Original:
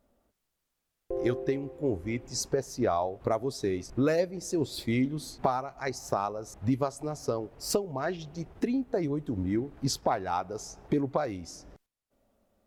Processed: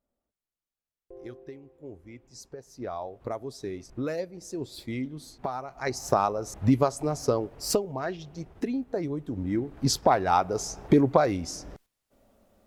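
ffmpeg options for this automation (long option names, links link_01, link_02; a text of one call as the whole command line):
ffmpeg -i in.wav -af "volume=15dB,afade=type=in:start_time=2.6:duration=0.5:silence=0.375837,afade=type=in:start_time=5.5:duration=0.64:silence=0.266073,afade=type=out:start_time=7.24:duration=0.87:silence=0.446684,afade=type=in:start_time=9.41:duration=0.93:silence=0.354813" out.wav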